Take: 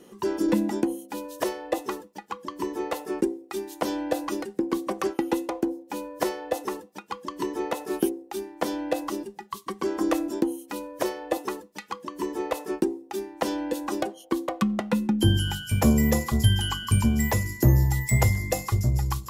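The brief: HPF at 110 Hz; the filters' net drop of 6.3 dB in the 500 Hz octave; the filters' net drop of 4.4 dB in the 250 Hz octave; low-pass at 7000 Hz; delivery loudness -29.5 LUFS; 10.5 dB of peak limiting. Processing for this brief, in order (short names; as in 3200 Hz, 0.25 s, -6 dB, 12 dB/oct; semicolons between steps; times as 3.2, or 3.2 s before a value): HPF 110 Hz; LPF 7000 Hz; bell 250 Hz -3 dB; bell 500 Hz -7.5 dB; gain +4.5 dB; limiter -16.5 dBFS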